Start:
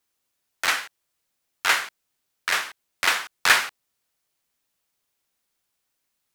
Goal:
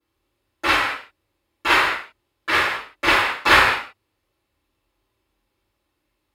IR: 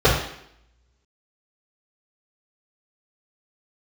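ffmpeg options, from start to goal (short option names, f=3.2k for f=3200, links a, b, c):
-filter_complex "[1:a]atrim=start_sample=2205,afade=t=out:st=0.22:d=0.01,atrim=end_sample=10143,asetrate=32193,aresample=44100[a];[0:a][a]afir=irnorm=-1:irlink=0,volume=-15.5dB"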